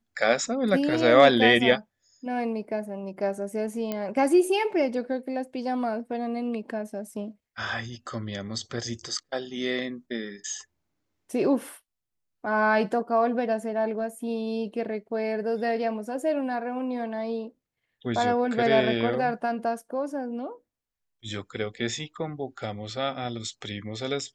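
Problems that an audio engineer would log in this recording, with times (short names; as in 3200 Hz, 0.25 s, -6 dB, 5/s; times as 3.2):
3.92 pop -16 dBFS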